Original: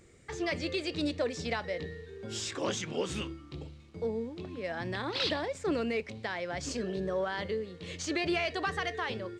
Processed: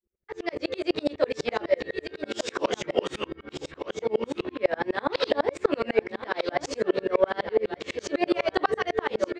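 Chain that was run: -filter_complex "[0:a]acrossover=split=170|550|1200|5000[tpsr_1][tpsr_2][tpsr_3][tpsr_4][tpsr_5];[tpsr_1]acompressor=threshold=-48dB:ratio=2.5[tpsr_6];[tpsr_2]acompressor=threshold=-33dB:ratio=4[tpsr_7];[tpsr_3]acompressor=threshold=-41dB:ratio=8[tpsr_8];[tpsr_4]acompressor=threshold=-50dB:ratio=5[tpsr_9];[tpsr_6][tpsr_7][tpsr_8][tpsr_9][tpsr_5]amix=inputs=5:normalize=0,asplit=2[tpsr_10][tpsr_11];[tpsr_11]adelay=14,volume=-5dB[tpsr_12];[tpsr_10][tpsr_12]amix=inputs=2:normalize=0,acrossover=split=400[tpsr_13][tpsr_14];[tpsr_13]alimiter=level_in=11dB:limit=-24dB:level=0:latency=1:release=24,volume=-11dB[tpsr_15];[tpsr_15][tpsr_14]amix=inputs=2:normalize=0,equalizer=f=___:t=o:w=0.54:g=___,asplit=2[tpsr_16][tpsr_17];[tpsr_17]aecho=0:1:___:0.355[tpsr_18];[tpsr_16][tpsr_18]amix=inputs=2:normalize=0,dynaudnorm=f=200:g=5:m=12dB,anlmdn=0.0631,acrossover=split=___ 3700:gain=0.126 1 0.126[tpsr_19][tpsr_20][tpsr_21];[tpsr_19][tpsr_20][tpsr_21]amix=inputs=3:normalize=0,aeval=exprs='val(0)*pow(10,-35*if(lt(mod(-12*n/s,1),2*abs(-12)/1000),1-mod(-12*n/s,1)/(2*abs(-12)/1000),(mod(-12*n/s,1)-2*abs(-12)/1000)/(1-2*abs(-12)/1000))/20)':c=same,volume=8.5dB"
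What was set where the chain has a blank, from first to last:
780, -3, 1194, 310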